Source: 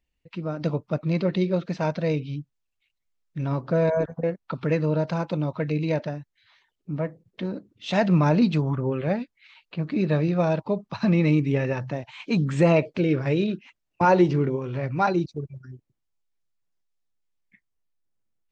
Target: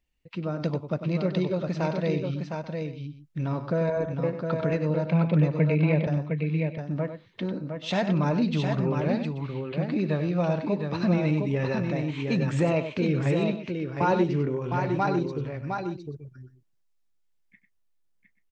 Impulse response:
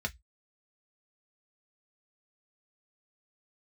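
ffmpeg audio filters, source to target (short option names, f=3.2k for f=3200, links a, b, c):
-filter_complex "[0:a]acompressor=threshold=-25dB:ratio=2,asettb=1/sr,asplit=3[a][b][c];[a]atrim=end=5.074[d];[b]atrim=start=5.07:end=6.07,asetpts=PTS-STARTPTS,afade=t=in:d=0.004:c=qsin,afade=t=out:st=0.996:d=0.004:c=qsin,highpass=f=120:w=0.5412,highpass=f=120:w=1.3066,equalizer=f=160:t=q:w=4:g=10,equalizer=f=440:t=q:w=4:g=4,equalizer=f=910:t=q:w=4:g=-4,equalizer=f=1.4k:t=q:w=4:g=-7,equalizer=f=2.3k:t=q:w=4:g=10,lowpass=f=3.5k:w=0.5412,lowpass=f=3.5k:w=1.3066[e];[c]atrim=start=6.066[f];[d][e]acrossfade=d=0.004:c1=hsin:c2=qsin[g];[g][f]acrossfade=d=0.004:c1=qsin:c2=hsin,aecho=1:1:97|710|834:0.316|0.562|0.133"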